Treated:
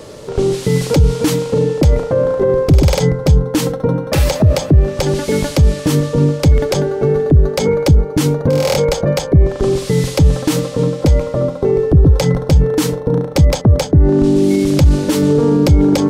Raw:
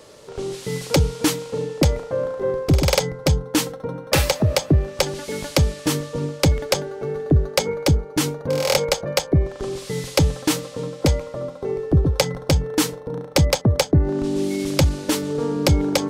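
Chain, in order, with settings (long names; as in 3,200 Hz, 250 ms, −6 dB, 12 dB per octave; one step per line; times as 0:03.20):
brickwall limiter −18.5 dBFS, peak gain reduction 11.5 dB
low-shelf EQ 470 Hz +9 dB
level +8 dB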